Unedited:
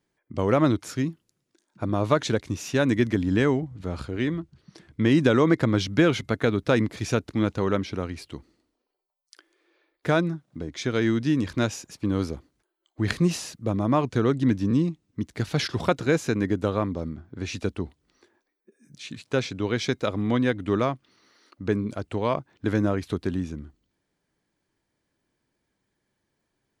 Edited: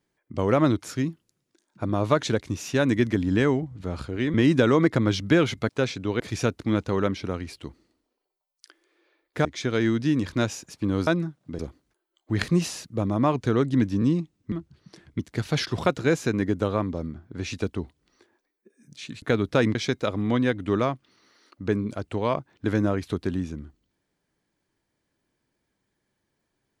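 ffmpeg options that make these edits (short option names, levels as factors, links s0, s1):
-filter_complex "[0:a]asplit=11[s0][s1][s2][s3][s4][s5][s6][s7][s8][s9][s10];[s0]atrim=end=4.342[s11];[s1]atrim=start=5.008:end=6.362[s12];[s2]atrim=start=19.238:end=19.752[s13];[s3]atrim=start=6.888:end=10.142[s14];[s4]atrim=start=10.658:end=12.282[s15];[s5]atrim=start=10.138:end=10.662[s16];[s6]atrim=start=12.278:end=15.212[s17];[s7]atrim=start=4.338:end=5.012[s18];[s8]atrim=start=15.208:end=19.242[s19];[s9]atrim=start=6.358:end=6.892[s20];[s10]atrim=start=19.748[s21];[s11][s12]acrossfade=d=0.004:c1=hsin:c2=hsin[s22];[s22][s13]acrossfade=d=0.004:c1=hsin:c2=hsin[s23];[s23][s14]acrossfade=d=0.004:c1=hsin:c2=hsin[s24];[s24][s15]acrossfade=d=0.004:c1=hsin:c2=hsin[s25];[s25][s16]acrossfade=d=0.004:c1=hsin:c2=hsin[s26];[s26][s17]acrossfade=d=0.004:c1=hsin:c2=hsin[s27];[s27][s18]acrossfade=d=0.004:c1=hsin:c2=hsin[s28];[s28][s19]acrossfade=d=0.004:c1=hsin:c2=hsin[s29];[s29][s20]acrossfade=d=0.004:c1=hsin:c2=hsin[s30];[s30][s21]acrossfade=d=0.004:c1=hsin:c2=hsin"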